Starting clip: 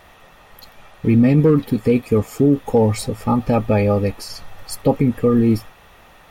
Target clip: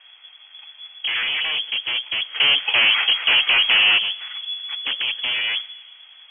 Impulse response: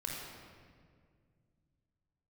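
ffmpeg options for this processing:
-filter_complex "[0:a]acrusher=samples=13:mix=1:aa=0.000001,lowshelf=frequency=260:width_type=q:width=3:gain=8.5,aeval=exprs='0.237*(abs(mod(val(0)/0.237+3,4)-2)-1)':channel_layout=same,asplit=3[link_01][link_02][link_03];[link_01]afade=type=out:start_time=2.34:duration=0.02[link_04];[link_02]asplit=2[link_05][link_06];[link_06]highpass=frequency=720:poles=1,volume=27dB,asoftclip=type=tanh:threshold=-1.5dB[link_07];[link_05][link_07]amix=inputs=2:normalize=0,lowpass=frequency=1600:poles=1,volume=-6dB,afade=type=in:start_time=2.34:duration=0.02,afade=type=out:start_time=3.97:duration=0.02[link_08];[link_03]afade=type=in:start_time=3.97:duration=0.02[link_09];[link_04][link_08][link_09]amix=inputs=3:normalize=0,asplit=2[link_10][link_11];[1:a]atrim=start_sample=2205[link_12];[link_11][link_12]afir=irnorm=-1:irlink=0,volume=-22dB[link_13];[link_10][link_13]amix=inputs=2:normalize=0,lowpass=frequency=2900:width_type=q:width=0.5098,lowpass=frequency=2900:width_type=q:width=0.6013,lowpass=frequency=2900:width_type=q:width=0.9,lowpass=frequency=2900:width_type=q:width=2.563,afreqshift=-3400,volume=-6dB"

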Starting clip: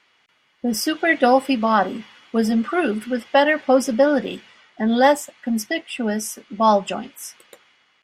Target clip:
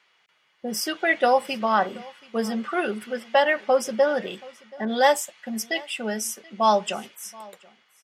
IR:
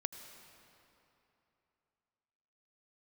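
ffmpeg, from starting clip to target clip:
-filter_complex "[0:a]highpass=160,equalizer=frequency=270:width=4.4:gain=-15,aecho=1:1:729:0.0708,asettb=1/sr,asplit=3[link_01][link_02][link_03];[link_01]atrim=end=4.854[link_04];[link_02]atrim=start=4.85:end=7.15,asetpts=PTS-STARTPTS,afade=type=in:duration=0.004:curve=qsin,afade=type=out:start_time=2.296:duration=0.004:curve=qsin,adynamicequalizer=threshold=0.0251:dfrequency=2300:dqfactor=0.7:tfrequency=2300:tqfactor=0.7:attack=5:release=100:ratio=0.375:range=2.5:mode=boostabove:tftype=highshelf[link_05];[link_03]atrim=start=7.146[link_06];[link_04][link_05]acrossfade=duration=0.004:curve1=hsin:curve2=qsin[link_07];[link_07][link_06]acrossfade=duration=0.004:curve1=qsin:curve2=hsin,volume=-3dB"

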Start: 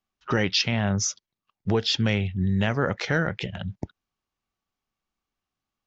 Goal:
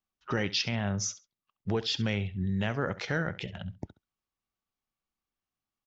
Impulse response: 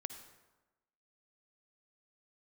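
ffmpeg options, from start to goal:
-af "aecho=1:1:68|136:0.15|0.0269,volume=-6.5dB"

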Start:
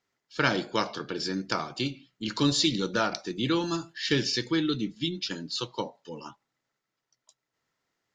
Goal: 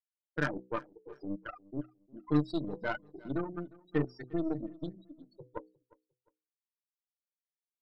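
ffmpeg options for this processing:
ffmpeg -i in.wav -filter_complex "[0:a]afftfilt=real='re*gte(hypot(re,im),0.158)':imag='im*gte(hypot(re,im),0.158)':win_size=1024:overlap=0.75,lowpass=1700,bandreject=frequency=60:width_type=h:width=6,bandreject=frequency=120:width_type=h:width=6,bandreject=frequency=180:width_type=h:width=6,bandreject=frequency=240:width_type=h:width=6,bandreject=frequency=300:width_type=h:width=6,bandreject=frequency=360:width_type=h:width=6,bandreject=frequency=420:width_type=h:width=6,bandreject=frequency=480:width_type=h:width=6,aecho=1:1:7:0.61,aeval=exprs='0.355*(cos(1*acos(clip(val(0)/0.355,-1,1)))-cos(1*PI/2))+0.0178*(cos(3*acos(clip(val(0)/0.355,-1,1)))-cos(3*PI/2))+0.0141*(cos(7*acos(clip(val(0)/0.355,-1,1)))-cos(7*PI/2))+0.0224*(cos(8*acos(clip(val(0)/0.355,-1,1)))-cos(8*PI/2))':channel_layout=same,asplit=2[link_01][link_02];[link_02]asoftclip=type=tanh:threshold=-21.5dB,volume=-9dB[link_03];[link_01][link_03]amix=inputs=2:normalize=0,aecho=1:1:369|738:0.0708|0.0212,asetrate=45938,aresample=44100,volume=-6dB" out.wav

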